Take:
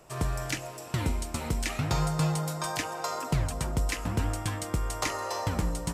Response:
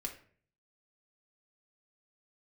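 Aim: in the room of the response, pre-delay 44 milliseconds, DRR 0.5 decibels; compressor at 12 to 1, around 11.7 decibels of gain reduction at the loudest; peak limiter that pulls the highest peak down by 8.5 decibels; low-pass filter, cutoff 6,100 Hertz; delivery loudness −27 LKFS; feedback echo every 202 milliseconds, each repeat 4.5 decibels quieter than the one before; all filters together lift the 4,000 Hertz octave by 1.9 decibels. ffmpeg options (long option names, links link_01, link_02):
-filter_complex "[0:a]lowpass=6100,equalizer=frequency=4000:width_type=o:gain=3.5,acompressor=threshold=-35dB:ratio=12,alimiter=level_in=6.5dB:limit=-24dB:level=0:latency=1,volume=-6.5dB,aecho=1:1:202|404|606|808|1010|1212|1414|1616|1818:0.596|0.357|0.214|0.129|0.0772|0.0463|0.0278|0.0167|0.01,asplit=2[link_01][link_02];[1:a]atrim=start_sample=2205,adelay=44[link_03];[link_02][link_03]afir=irnorm=-1:irlink=0,volume=0.5dB[link_04];[link_01][link_04]amix=inputs=2:normalize=0,volume=10dB"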